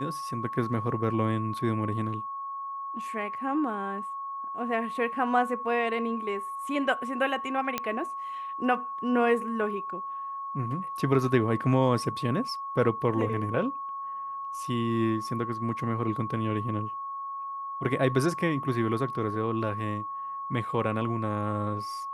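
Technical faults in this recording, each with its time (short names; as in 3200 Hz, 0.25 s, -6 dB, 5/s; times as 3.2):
tone 1100 Hz -33 dBFS
7.78 pop -12 dBFS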